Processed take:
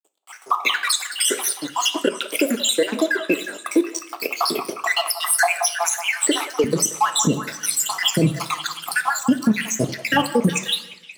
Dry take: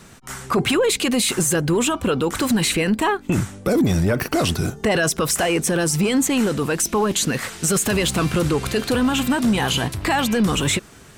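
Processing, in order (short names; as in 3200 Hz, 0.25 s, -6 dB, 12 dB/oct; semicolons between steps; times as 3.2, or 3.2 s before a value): random spectral dropouts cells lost 81%; crossover distortion -44.5 dBFS; two-slope reverb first 0.53 s, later 1.9 s, from -20 dB, DRR 11 dB; flange 2 Hz, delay 4.7 ms, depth 8.3 ms, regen -78%; HPF 350 Hz 24 dB/oct, from 6.64 s 130 Hz; AGC gain up to 16.5 dB; delay with a stepping band-pass 0.179 s, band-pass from 920 Hz, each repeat 0.7 oct, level -8.5 dB; compressor 3:1, threshold -15 dBFS, peak gain reduction 7 dB; maximiser +7 dB; gain -6 dB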